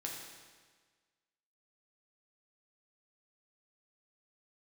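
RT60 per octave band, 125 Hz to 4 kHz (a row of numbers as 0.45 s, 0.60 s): 1.5 s, 1.5 s, 1.5 s, 1.5 s, 1.5 s, 1.4 s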